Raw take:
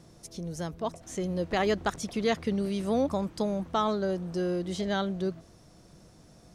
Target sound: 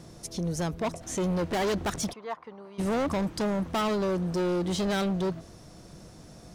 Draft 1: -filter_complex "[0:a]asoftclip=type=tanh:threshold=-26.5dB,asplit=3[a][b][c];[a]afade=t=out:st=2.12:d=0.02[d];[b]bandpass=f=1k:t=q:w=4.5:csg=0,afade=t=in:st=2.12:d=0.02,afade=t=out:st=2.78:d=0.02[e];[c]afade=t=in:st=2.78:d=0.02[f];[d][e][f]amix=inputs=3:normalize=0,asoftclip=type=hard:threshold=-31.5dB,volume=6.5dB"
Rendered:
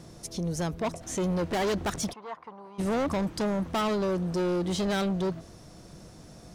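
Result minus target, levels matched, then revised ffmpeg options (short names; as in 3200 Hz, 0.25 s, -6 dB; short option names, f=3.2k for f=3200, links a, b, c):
soft clip: distortion +16 dB
-filter_complex "[0:a]asoftclip=type=tanh:threshold=-15dB,asplit=3[a][b][c];[a]afade=t=out:st=2.12:d=0.02[d];[b]bandpass=f=1k:t=q:w=4.5:csg=0,afade=t=in:st=2.12:d=0.02,afade=t=out:st=2.78:d=0.02[e];[c]afade=t=in:st=2.78:d=0.02[f];[d][e][f]amix=inputs=3:normalize=0,asoftclip=type=hard:threshold=-31.5dB,volume=6.5dB"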